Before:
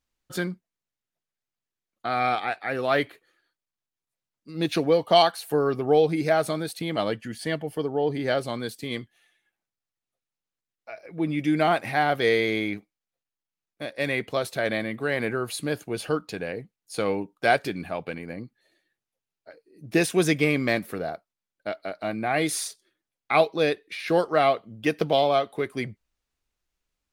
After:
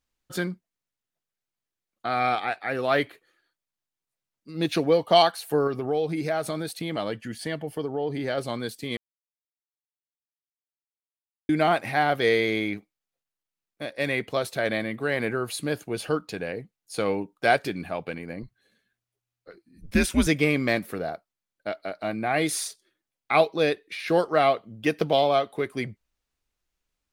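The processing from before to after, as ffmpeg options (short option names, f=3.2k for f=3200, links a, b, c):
-filter_complex "[0:a]asettb=1/sr,asplit=3[a][b][c];[a]atrim=end=5.674[d];[b]atrim=start=5.67:end=8.38,asetpts=PTS-STARTPTS,afade=t=in:d=0.004:c=qsin,afade=t=out:st=2.706:d=0.004:c=qsin,acompressor=threshold=-26dB:ratio=2:attack=3.2:release=140:knee=1:detection=peak[e];[c]atrim=start=8.376[f];[d][e]acrossfade=d=0.004:c1=hsin:c2=qsin[g];[g][f]acrossfade=d=0.004:c1=qsin:c2=hsin,asettb=1/sr,asplit=3[h][i][j];[h]atrim=end=18.424[k];[i]atrim=start=18.42:end=20.27,asetpts=PTS-STARTPTS,afade=t=in:d=0.004:c=qsin,afade=t=out:st=1.846:d=0.004:c=qsin,afreqshift=-120[l];[j]atrim=start=20.266[m];[k][l]acrossfade=d=0.004:c1=hsin:c2=qsin[n];[n][m]acrossfade=d=0.004:c1=qsin:c2=hsin,asplit=3[o][p][q];[o]atrim=end=8.97,asetpts=PTS-STARTPTS,afade=t=out:st=8.966:d=0.004:c=hsin[r];[p]atrim=start=8.97:end=11.49,asetpts=PTS-STARTPTS,volume=0[s];[q]atrim=start=11.49,asetpts=PTS-STARTPTS,afade=t=in:d=0.004:c=hsin[t];[r][s][t]concat=n=3:v=0:a=1"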